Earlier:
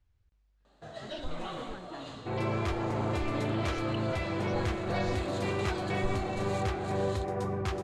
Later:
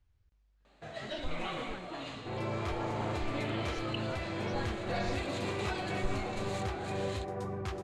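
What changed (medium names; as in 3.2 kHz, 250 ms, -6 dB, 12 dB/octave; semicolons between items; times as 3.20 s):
first sound: add peaking EQ 2.3 kHz +11.5 dB 0.49 oct; second sound -5.0 dB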